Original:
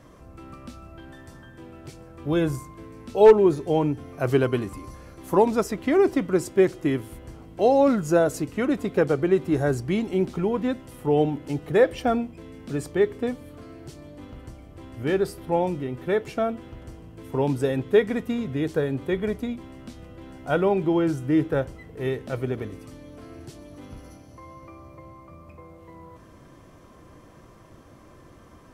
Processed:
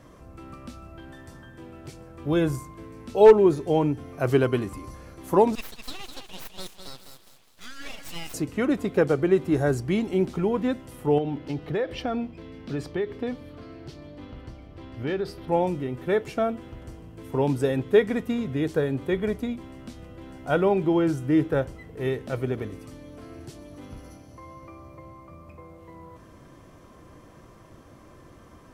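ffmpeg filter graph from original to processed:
-filter_complex "[0:a]asettb=1/sr,asplit=3[a][b][c];[a]atrim=end=5.554[d];[b]atrim=start=5.55:end=8.34,asetpts=PTS-STARTPTS,afade=t=in:d=0.004:c=qsin,afade=t=out:st=2.786:d=0.004:c=qsin,highpass=f=1.2k:w=0.5412,highpass=f=1.2k:w=1.3066,aecho=1:1:205|410|615|820:0.422|0.139|0.0459|0.0152,atrim=end_sample=123039,aeval=exprs='abs(val(0))':c=same[e];[c]atrim=start=8.336[f];[d][e]acrossfade=d=0.004:c1=hsin:c2=qsin[g];[g][f]acrossfade=d=0.004:c1=qsin:c2=hsin,asettb=1/sr,asplit=3[h][i][j];[h]atrim=end=11.184[k];[i]atrim=start=11.18:end=15.48,asetpts=PTS-STARTPTS,afade=t=in:d=0.004:c=qsin,afade=t=out:st=4.296:d=0.004:c=qsin,highshelf=f=6.1k:t=q:w=1.5:g=-9.5,acompressor=threshold=-24dB:ratio=4:attack=3.2:release=140:knee=1:detection=peak[l];[j]atrim=start=15.476[m];[k][l]acrossfade=d=0.004:c1=hsin:c2=qsin[n];[n][m]acrossfade=d=0.004:c1=qsin:c2=hsin"

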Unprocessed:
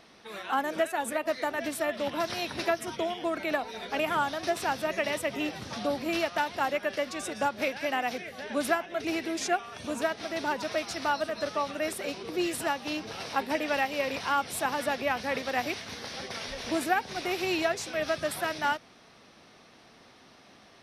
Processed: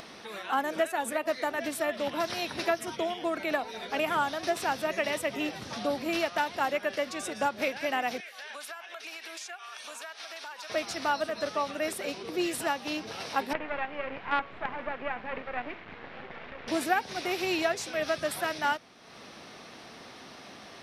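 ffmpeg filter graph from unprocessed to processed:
-filter_complex "[0:a]asettb=1/sr,asplit=3[a][b][c];[a]atrim=end=8.204[d];[b]atrim=start=8.2:end=10.7,asetpts=PTS-STARTPTS,afade=t=in:d=0.004:c=qsin,afade=t=out:st=2.496:d=0.004:c=qsin,highpass=1.1k,bandreject=f=2k:w=18,acompressor=threshold=-39dB:ratio=6:attack=3.2:release=140:knee=1:detection=peak[e];[c]atrim=start=10.696[f];[d][e]acrossfade=d=0.004:c1=hsin:c2=qsin[g];[g][f]acrossfade=d=0.004:c1=qsin:c2=hsin,asettb=1/sr,asplit=3[h][i][j];[h]atrim=end=13.534[k];[i]atrim=start=13.53:end=16.68,asetpts=PTS-STARTPTS,afade=t=in:d=0.004:c=qsin,afade=t=out:st=3.146:d=0.004:c=qsin,bandreject=f=111.9:t=h:w=4,bandreject=f=223.8:t=h:w=4,bandreject=f=335.7:t=h:w=4,bandreject=f=447.6:t=h:w=4,bandreject=f=559.5:t=h:w=4,bandreject=f=671.4:t=h:w=4,bandreject=f=783.3:t=h:w=4,bandreject=f=895.2:t=h:w=4,bandreject=f=1.0071k:t=h:w=4,bandreject=f=1.119k:t=h:w=4,bandreject=f=1.2309k:t=h:w=4,bandreject=f=1.3428k:t=h:w=4,bandreject=f=1.4547k:t=h:w=4,bandreject=f=1.5666k:t=h:w=4,bandreject=f=1.6785k:t=h:w=4,bandreject=f=1.7904k:t=h:w=4,bandreject=f=1.9023k:t=h:w=4,bandreject=f=2.0142k:t=h:w=4,bandreject=f=2.1261k:t=h:w=4,bandreject=f=2.238k:t=h:w=4,bandreject=f=2.3499k:t=h:w=4,bandreject=f=2.4618k:t=h:w=4,bandreject=f=2.5737k:t=h:w=4,bandreject=f=2.6856k:t=h:w=4,bandreject=f=2.7975k:t=h:w=4,bandreject=f=2.9094k:t=h:w=4,bandreject=f=3.0213k:t=h:w=4,bandreject=f=3.1332k:t=h:w=4,bandreject=f=3.2451k:t=h:w=4,bandreject=f=3.357k:t=h:w=4,bandreject=f=3.4689k:t=h:w=4,bandreject=f=3.5808k:t=h:w=4,bandreject=f=3.6927k:t=h:w=4,acrusher=bits=4:dc=4:mix=0:aa=0.000001,lowpass=f=2.5k:w=0.5412,lowpass=f=2.5k:w=1.3066[l];[j]atrim=start=16.676[m];[k][l]acrossfade=d=0.004:c1=hsin:c2=qsin[n];[n][m]acrossfade=d=0.004:c1=qsin:c2=hsin,lowshelf=f=99:g=-6.5,acompressor=mode=upward:threshold=-38dB:ratio=2.5"

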